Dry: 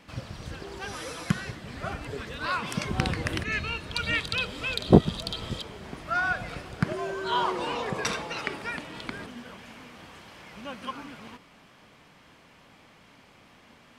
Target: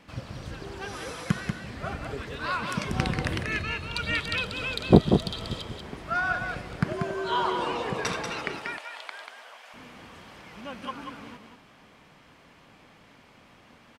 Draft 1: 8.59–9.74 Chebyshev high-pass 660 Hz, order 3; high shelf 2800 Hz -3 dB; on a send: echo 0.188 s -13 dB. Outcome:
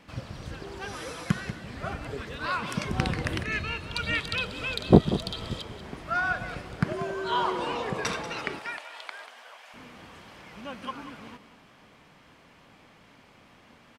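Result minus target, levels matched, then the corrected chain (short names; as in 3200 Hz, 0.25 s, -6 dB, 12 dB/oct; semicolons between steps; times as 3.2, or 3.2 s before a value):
echo-to-direct -7 dB
8.59–9.74 Chebyshev high-pass 660 Hz, order 3; high shelf 2800 Hz -3 dB; on a send: echo 0.188 s -6 dB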